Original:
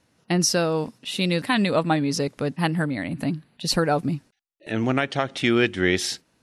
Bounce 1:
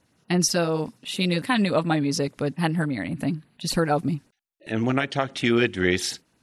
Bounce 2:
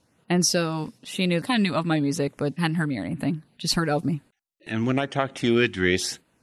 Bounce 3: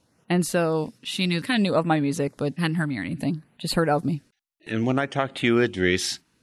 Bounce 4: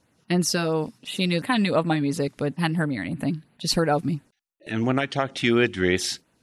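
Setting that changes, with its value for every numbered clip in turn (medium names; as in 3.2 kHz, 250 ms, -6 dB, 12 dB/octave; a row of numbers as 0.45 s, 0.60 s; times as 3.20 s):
LFO notch, rate: 8.7 Hz, 1 Hz, 0.61 Hz, 2.9 Hz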